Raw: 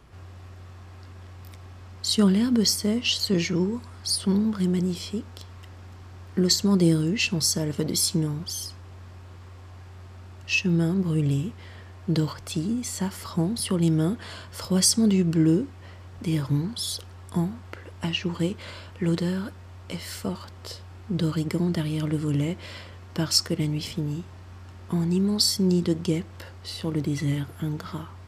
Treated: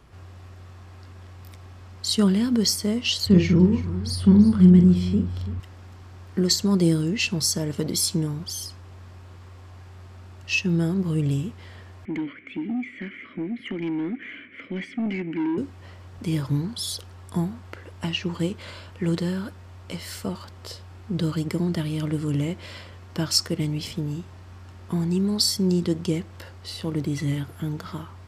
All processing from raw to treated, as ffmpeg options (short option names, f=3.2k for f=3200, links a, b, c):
-filter_complex "[0:a]asettb=1/sr,asplit=3[a][b][c];[a]atrim=end=3.264[d];[b]atrim=start=3.26:end=5.6,asetpts=PTS-STARTPTS,afade=t=in:d=0.004:c=qsin,afade=t=out:st=2.336:d=0.004:c=qsin,bass=f=250:g=12,treble=f=4k:g=-10,asplit=2[e][f];[f]adelay=44,volume=-7.5dB[g];[e][g]amix=inputs=2:normalize=0,atrim=end_sample=103194,aecho=1:1:334:0.178,atrim=end_sample=103194[h];[c]atrim=start=5.596[i];[d][h]acrossfade=d=0.004:c1=hsin:c2=qsin[j];[j][i]acrossfade=d=0.004:c1=qsin:c2=hsin,asettb=1/sr,asplit=3[k][l][m];[k]atrim=end=12.054[n];[l]atrim=start=12.05:end=15.58,asetpts=PTS-STARTPTS,afade=t=in:d=0.004:c=qsin,afade=t=out:st=3.526:d=0.004:c=qsin,asplit=3[o][p][q];[o]bandpass=f=270:t=q:w=8,volume=0dB[r];[p]bandpass=f=2.29k:t=q:w=8,volume=-6dB[s];[q]bandpass=f=3.01k:t=q:w=8,volume=-9dB[t];[r][s][t]amix=inputs=3:normalize=0,highshelf=f=3.2k:t=q:w=3:g=-13.5,asplit=2[u][v];[v]highpass=f=720:p=1,volume=25dB,asoftclip=type=tanh:threshold=-17.5dB[w];[u][w]amix=inputs=2:normalize=0,lowpass=f=1.5k:p=1,volume=-6dB[x];[m]atrim=start=15.576[y];[n][x]acrossfade=d=0.004:c1=hsin:c2=qsin[z];[z][y]acrossfade=d=0.004:c1=qsin:c2=hsin"